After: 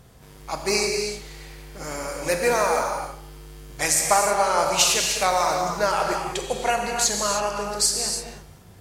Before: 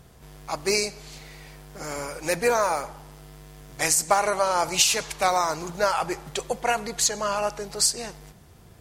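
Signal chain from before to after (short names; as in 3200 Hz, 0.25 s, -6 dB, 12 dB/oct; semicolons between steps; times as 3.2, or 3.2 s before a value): non-linear reverb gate 0.34 s flat, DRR 1.5 dB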